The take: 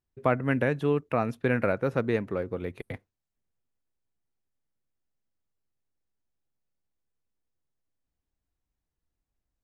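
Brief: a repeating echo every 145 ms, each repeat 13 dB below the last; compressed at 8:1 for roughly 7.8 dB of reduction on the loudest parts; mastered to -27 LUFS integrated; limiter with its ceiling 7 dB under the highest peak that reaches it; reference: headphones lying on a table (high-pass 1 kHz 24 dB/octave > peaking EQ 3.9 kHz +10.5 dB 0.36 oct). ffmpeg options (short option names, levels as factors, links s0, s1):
-af "acompressor=threshold=0.0398:ratio=8,alimiter=limit=0.075:level=0:latency=1,highpass=f=1000:w=0.5412,highpass=f=1000:w=1.3066,equalizer=f=3900:t=o:w=0.36:g=10.5,aecho=1:1:145|290|435:0.224|0.0493|0.0108,volume=7.94"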